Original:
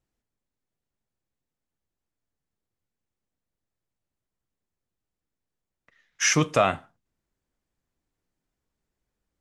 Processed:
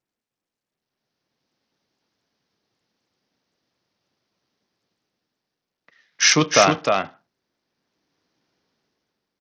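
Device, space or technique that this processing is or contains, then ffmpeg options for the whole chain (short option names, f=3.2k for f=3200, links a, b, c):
Bluetooth headset: -af "highpass=180,equalizer=f=4.8k:t=o:w=0.59:g=5,aecho=1:1:307:0.596,dynaudnorm=f=170:g=13:m=15.5dB,aresample=16000,aresample=44100,volume=-1dB" -ar 48000 -c:a sbc -b:a 64k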